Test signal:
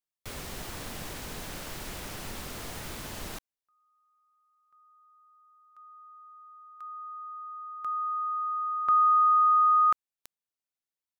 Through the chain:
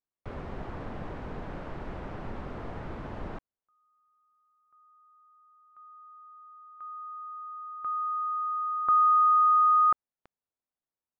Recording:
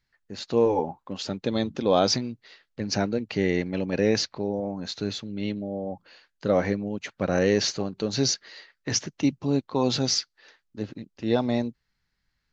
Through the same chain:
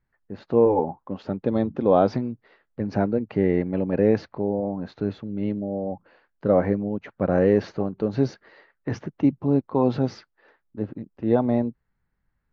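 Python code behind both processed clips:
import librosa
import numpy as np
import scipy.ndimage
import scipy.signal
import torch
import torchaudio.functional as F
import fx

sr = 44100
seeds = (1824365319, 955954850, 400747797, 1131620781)

y = scipy.signal.sosfilt(scipy.signal.butter(2, 1200.0, 'lowpass', fs=sr, output='sos'), x)
y = y * 10.0 ** (3.5 / 20.0)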